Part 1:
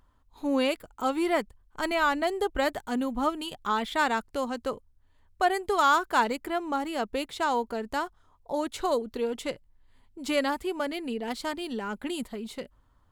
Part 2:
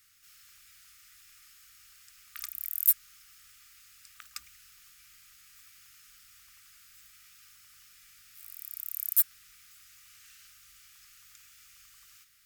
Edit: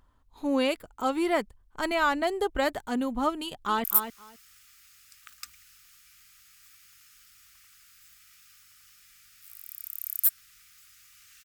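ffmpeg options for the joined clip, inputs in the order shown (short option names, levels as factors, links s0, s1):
-filter_complex "[0:a]apad=whole_dur=11.44,atrim=end=11.44,atrim=end=3.842[s0];[1:a]atrim=start=2.768:end=10.37[s1];[s0][s1]acrossfade=d=0.004:c1=hsin:c2=hsin,asplit=2[s2][s3];[s3]afade=t=in:st=3.42:d=0.01,afade=t=out:st=3.84:d=0.01,aecho=0:1:260|520:0.398107|0.0597161[s4];[s2][s4]amix=inputs=2:normalize=0"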